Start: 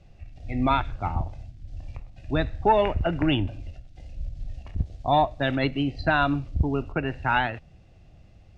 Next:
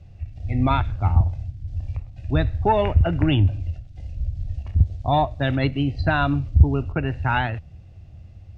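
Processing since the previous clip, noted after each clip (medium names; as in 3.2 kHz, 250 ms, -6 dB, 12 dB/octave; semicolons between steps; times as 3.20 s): peaking EQ 87 Hz +14 dB 1.3 oct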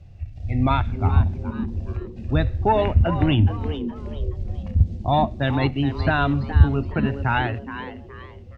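frequency-shifting echo 420 ms, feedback 34%, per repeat +140 Hz, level -12 dB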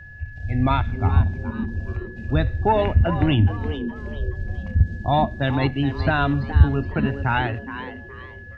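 whistle 1.7 kHz -41 dBFS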